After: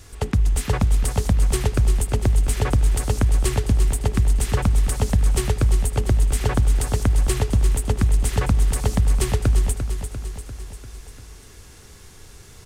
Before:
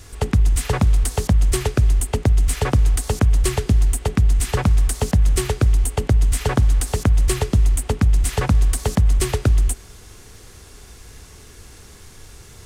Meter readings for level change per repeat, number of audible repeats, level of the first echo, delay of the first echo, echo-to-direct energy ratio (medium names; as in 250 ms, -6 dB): -4.5 dB, 5, -9.0 dB, 346 ms, -7.0 dB